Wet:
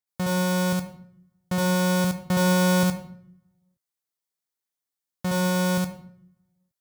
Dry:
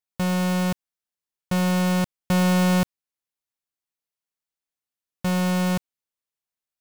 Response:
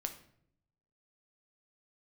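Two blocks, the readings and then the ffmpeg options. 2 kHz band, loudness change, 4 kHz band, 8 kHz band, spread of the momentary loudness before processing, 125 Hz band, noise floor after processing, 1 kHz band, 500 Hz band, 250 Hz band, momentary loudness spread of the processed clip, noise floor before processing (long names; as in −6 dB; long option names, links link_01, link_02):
+1.5 dB, −0.5 dB, +1.0 dB, +3.5 dB, 9 LU, −1.5 dB, below −85 dBFS, +0.5 dB, +2.5 dB, −1.5 dB, 11 LU, below −85 dBFS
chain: -filter_complex "[0:a]highpass=65,equalizer=frequency=2700:width_type=o:width=0.26:gain=-7,asplit=2[link_01][link_02];[1:a]atrim=start_sample=2205,highshelf=frequency=4700:gain=6.5,adelay=68[link_03];[link_02][link_03]afir=irnorm=-1:irlink=0,volume=0dB[link_04];[link_01][link_04]amix=inputs=2:normalize=0,volume=-2.5dB"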